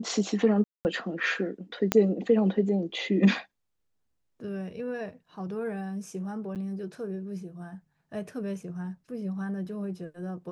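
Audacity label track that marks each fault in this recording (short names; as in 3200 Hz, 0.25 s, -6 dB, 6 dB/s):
0.640000	0.850000	gap 0.209 s
1.920000	1.920000	pop -8 dBFS
6.550000	6.560000	gap 8.2 ms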